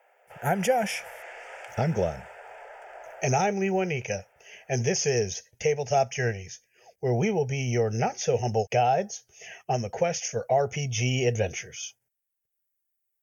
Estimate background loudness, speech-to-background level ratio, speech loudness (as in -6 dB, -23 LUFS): -44.5 LUFS, 17.5 dB, -27.0 LUFS